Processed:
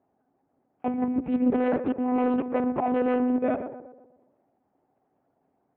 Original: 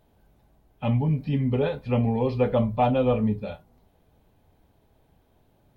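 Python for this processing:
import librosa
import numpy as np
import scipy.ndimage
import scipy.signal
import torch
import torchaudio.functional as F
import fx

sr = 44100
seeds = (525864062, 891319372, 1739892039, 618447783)

y = fx.peak_eq(x, sr, hz=830.0, db=10.5, octaves=1.3)
y = fx.auto_swell(y, sr, attack_ms=434.0)
y = fx.leveller(y, sr, passes=3)
y = fx.transient(y, sr, attack_db=8, sustain_db=-1)
y = fx.level_steps(y, sr, step_db=24)
y = 10.0 ** (-14.0 / 20.0) * np.tanh(y / 10.0 ** (-14.0 / 20.0))
y = fx.echo_tape(y, sr, ms=123, feedback_pct=54, wet_db=-8, lp_hz=1300.0, drive_db=11.0, wow_cents=12)
y = fx.lpc_monotone(y, sr, seeds[0], pitch_hz=250.0, order=10)
y = fx.cabinet(y, sr, low_hz=150.0, low_slope=12, high_hz=2200.0, hz=(270.0, 390.0, 980.0), db=(10, 4, -3))
y = fx.doppler_dist(y, sr, depth_ms=0.3, at=(1.18, 3.4))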